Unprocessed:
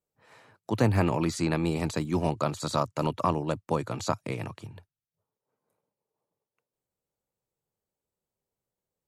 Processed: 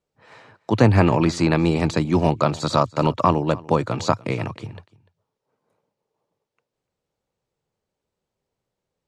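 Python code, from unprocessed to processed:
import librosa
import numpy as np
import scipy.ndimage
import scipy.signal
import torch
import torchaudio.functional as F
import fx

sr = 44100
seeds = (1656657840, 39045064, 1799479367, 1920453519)

p1 = scipy.signal.sosfilt(scipy.signal.butter(2, 5700.0, 'lowpass', fs=sr, output='sos'), x)
p2 = p1 + fx.echo_single(p1, sr, ms=294, db=-22.0, dry=0)
y = p2 * librosa.db_to_amplitude(8.5)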